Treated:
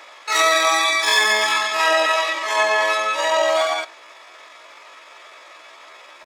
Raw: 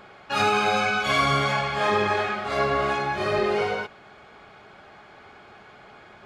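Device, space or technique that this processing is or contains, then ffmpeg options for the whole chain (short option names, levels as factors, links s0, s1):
chipmunk voice: -filter_complex "[0:a]highpass=f=270:w=0.5412,highpass=f=270:w=1.3066,equalizer=f=5400:t=o:w=0.83:g=3,asettb=1/sr,asplit=3[s0][s1][s2];[s0]atrim=end=2.384[s3];[s1]atrim=start=2.38:end=3.4,asetpts=PTS-STARTPTS,afade=t=in:d=0.004:c=qsin,afade=t=out:st=1.016:d=0.004:c=qsin,lowpass=f=8400:w=0.5412,lowpass=f=8400:w=1.3066[s4];[s2]atrim=start=3.396[s5];[s3][s4]acrossfade=d=0.004:c1=hsin:c2=qsin[s6];[s6][s5]acrossfade=d=0.004:c1=qsin:c2=hsin,asplit=2[s7][s8];[s8]adelay=77,lowpass=f=850:p=1,volume=0.0891,asplit=2[s9][s10];[s10]adelay=77,lowpass=f=850:p=1,volume=0.24[s11];[s7][s9][s11]amix=inputs=3:normalize=0,asetrate=68011,aresample=44100,atempo=0.64842,volume=1.88"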